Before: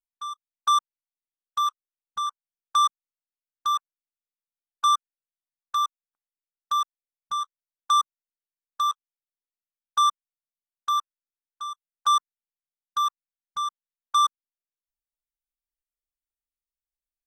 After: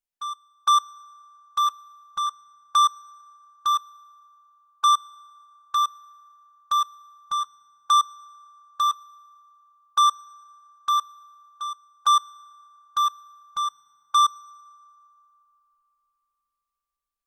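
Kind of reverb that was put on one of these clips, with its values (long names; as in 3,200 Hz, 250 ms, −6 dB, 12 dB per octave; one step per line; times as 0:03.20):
feedback delay network reverb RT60 3.4 s, high-frequency decay 0.45×, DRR 19.5 dB
level +2 dB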